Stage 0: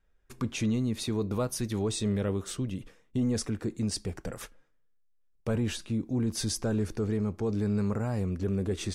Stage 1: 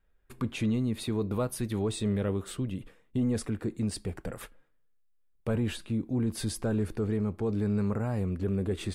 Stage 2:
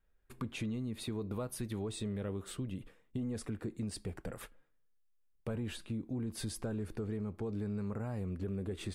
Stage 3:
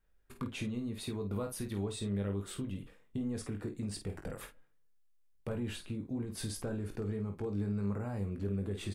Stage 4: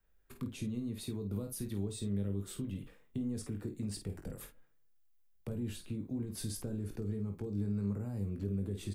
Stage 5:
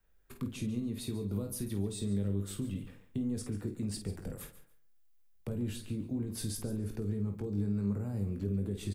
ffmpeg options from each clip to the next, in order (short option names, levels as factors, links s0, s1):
-af "equalizer=f=5900:w=2.1:g=-11.5"
-af "acompressor=threshold=0.0316:ratio=6,volume=0.596"
-af "aecho=1:1:20|50:0.422|0.376"
-filter_complex "[0:a]acrossover=split=150|420|4100[s0][s1][s2][s3];[s2]acompressor=threshold=0.00158:ratio=6[s4];[s3]aexciter=amount=1.8:drive=4.5:freq=12000[s5];[s0][s1][s4][s5]amix=inputs=4:normalize=0"
-af "aecho=1:1:142|284:0.188|0.0396,volume=1.33"